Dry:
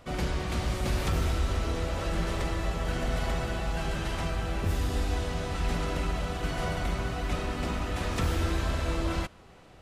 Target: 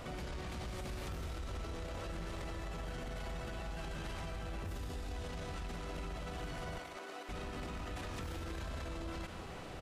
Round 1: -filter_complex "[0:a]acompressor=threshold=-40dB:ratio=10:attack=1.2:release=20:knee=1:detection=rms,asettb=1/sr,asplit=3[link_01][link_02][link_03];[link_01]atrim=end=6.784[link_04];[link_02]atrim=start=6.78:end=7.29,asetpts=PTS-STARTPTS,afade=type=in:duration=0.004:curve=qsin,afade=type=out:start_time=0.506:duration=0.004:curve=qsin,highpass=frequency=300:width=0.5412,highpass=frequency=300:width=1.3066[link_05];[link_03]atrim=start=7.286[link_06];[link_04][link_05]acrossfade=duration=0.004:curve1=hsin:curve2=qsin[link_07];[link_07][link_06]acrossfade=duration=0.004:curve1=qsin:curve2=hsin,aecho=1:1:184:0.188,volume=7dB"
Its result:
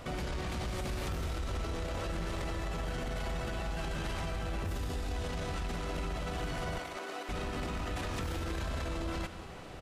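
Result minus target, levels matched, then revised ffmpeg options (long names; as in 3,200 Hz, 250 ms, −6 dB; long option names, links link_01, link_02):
downward compressor: peak gain reduction −6.5 dB
-filter_complex "[0:a]acompressor=threshold=-47dB:ratio=10:attack=1.2:release=20:knee=1:detection=rms,asettb=1/sr,asplit=3[link_01][link_02][link_03];[link_01]atrim=end=6.784[link_04];[link_02]atrim=start=6.78:end=7.29,asetpts=PTS-STARTPTS,afade=type=in:duration=0.004:curve=qsin,afade=type=out:start_time=0.506:duration=0.004:curve=qsin,highpass=frequency=300:width=0.5412,highpass=frequency=300:width=1.3066[link_05];[link_03]atrim=start=7.286[link_06];[link_04][link_05]acrossfade=duration=0.004:curve1=hsin:curve2=qsin[link_07];[link_07][link_06]acrossfade=duration=0.004:curve1=qsin:curve2=hsin,aecho=1:1:184:0.188,volume=7dB"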